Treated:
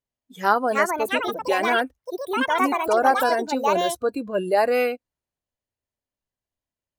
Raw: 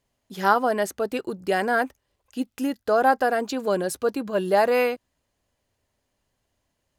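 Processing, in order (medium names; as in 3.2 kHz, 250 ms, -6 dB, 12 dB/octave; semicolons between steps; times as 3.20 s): spectral noise reduction 17 dB; ever faster or slower copies 445 ms, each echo +6 st, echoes 2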